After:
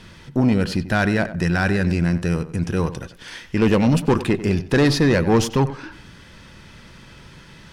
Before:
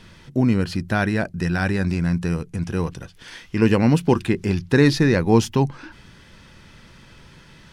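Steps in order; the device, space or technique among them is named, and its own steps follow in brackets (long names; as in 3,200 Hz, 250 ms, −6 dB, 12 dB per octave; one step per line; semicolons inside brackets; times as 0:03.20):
rockabilly slapback (tube saturation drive 15 dB, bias 0.4; tape delay 93 ms, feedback 28%, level −12 dB, low-pass 2,400 Hz)
level +4.5 dB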